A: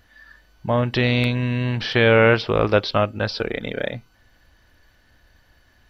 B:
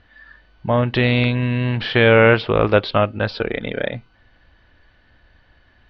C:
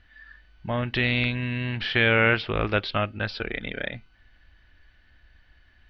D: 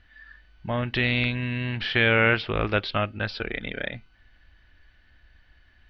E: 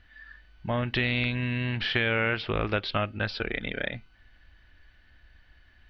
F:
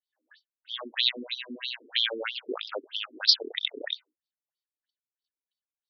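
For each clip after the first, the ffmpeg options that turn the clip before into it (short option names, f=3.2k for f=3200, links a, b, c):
-af "lowpass=f=3.9k:w=0.5412,lowpass=f=3.9k:w=1.3066,volume=2.5dB"
-af "equalizer=f=125:t=o:w=1:g=-8,equalizer=f=250:t=o:w=1:g=-5,equalizer=f=500:t=o:w=1:g=-10,equalizer=f=1k:t=o:w=1:g=-8,equalizer=f=4k:t=o:w=1:g=-4"
-af anull
-af "acompressor=threshold=-22dB:ratio=6"
-af "aexciter=amount=14.9:drive=6.8:freq=3.7k,agate=range=-39dB:threshold=-46dB:ratio=16:detection=peak,afftfilt=real='re*between(b*sr/1024,310*pow(4400/310,0.5+0.5*sin(2*PI*3.1*pts/sr))/1.41,310*pow(4400/310,0.5+0.5*sin(2*PI*3.1*pts/sr))*1.41)':imag='im*between(b*sr/1024,310*pow(4400/310,0.5+0.5*sin(2*PI*3.1*pts/sr))/1.41,310*pow(4400/310,0.5+0.5*sin(2*PI*3.1*pts/sr))*1.41)':win_size=1024:overlap=0.75"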